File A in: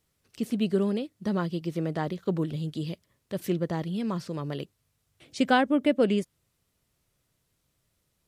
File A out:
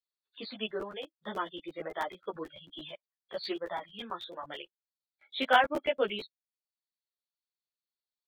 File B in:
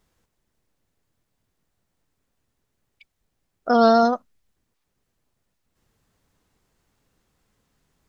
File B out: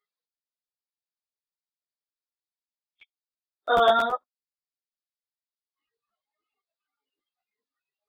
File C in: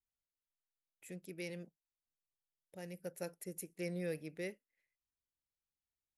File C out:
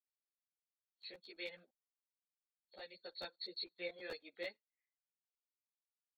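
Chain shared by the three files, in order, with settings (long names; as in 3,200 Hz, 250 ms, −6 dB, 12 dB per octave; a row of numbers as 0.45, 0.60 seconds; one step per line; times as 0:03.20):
hearing-aid frequency compression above 3,200 Hz 4 to 1
reverb reduction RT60 1 s
high-pass filter 620 Hz 12 dB per octave
noise reduction from a noise print of the clip's start 26 dB
regular buffer underruns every 0.11 s, samples 512, repeat, from 0:00.68
string-ensemble chorus
level +4.5 dB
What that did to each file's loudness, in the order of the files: −5.5, −4.5, −3.0 LU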